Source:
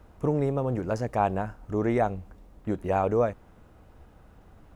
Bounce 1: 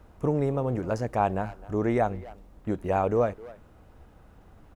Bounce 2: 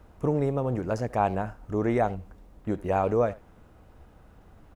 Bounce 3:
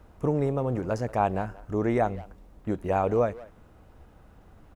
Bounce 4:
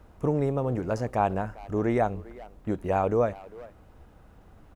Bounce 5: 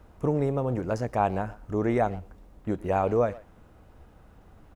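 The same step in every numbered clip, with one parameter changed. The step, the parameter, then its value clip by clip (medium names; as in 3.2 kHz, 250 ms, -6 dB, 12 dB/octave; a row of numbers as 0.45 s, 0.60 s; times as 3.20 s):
speakerphone echo, time: 260 ms, 80 ms, 180 ms, 400 ms, 120 ms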